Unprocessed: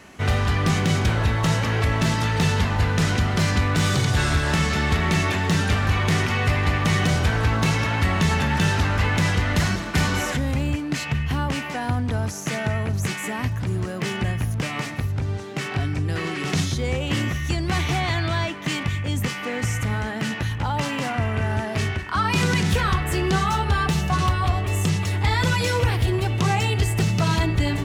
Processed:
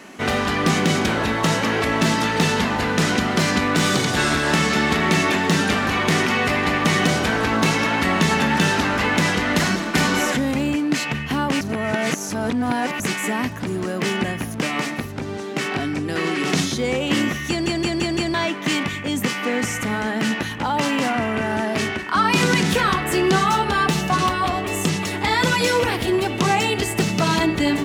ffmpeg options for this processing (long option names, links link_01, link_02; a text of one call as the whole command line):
ffmpeg -i in.wav -filter_complex "[0:a]asplit=8[link_01][link_02][link_03][link_04][link_05][link_06][link_07][link_08];[link_01]atrim=end=11.612[link_09];[link_02]atrim=start=11.608:end=13.002,asetpts=PTS-STARTPTS,areverse[link_10];[link_03]atrim=start=12.998:end=17.662[link_11];[link_04]atrim=start=17.488:end=17.662[link_12];[link_05]atrim=start=17.488:end=17.662[link_13];[link_06]atrim=start=17.488:end=17.662[link_14];[link_07]atrim=start=17.488:end=17.662[link_15];[link_08]atrim=start=18.338[link_16];[link_09][link_10]acrossfade=duration=0.004:curve1=hsin:curve2=hsin[link_17];[link_17][link_11]acrossfade=duration=0.004:curve1=hsin:curve2=hsin[link_18];[link_18][link_12]acrossfade=duration=0.004:curve1=hsin:curve2=hsin[link_19];[link_19][link_13]acrossfade=duration=0.004:curve1=hsin:curve2=hsin[link_20];[link_20][link_14]acrossfade=duration=0.004:curve1=hsin:curve2=hsin[link_21];[link_21][link_15]acrossfade=duration=0.004:curve1=hsin:curve2=hsin[link_22];[link_22][link_16]acrossfade=duration=0.004:curve1=hsin:curve2=hsin,lowshelf=frequency=150:width_type=q:width=1.5:gain=-13.5,volume=4.5dB" out.wav